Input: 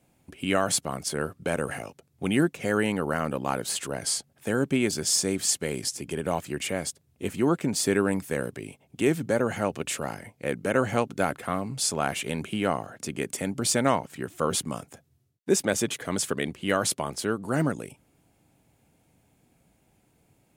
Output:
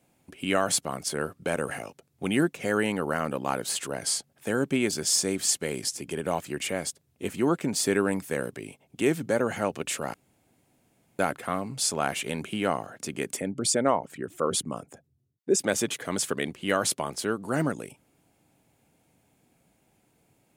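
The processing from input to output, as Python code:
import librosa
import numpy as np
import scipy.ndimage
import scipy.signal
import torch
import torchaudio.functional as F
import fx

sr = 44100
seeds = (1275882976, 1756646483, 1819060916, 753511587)

y = fx.envelope_sharpen(x, sr, power=1.5, at=(13.38, 15.62))
y = fx.edit(y, sr, fx.room_tone_fill(start_s=10.14, length_s=1.05), tone=tone)
y = fx.low_shelf(y, sr, hz=110.0, db=-8.5)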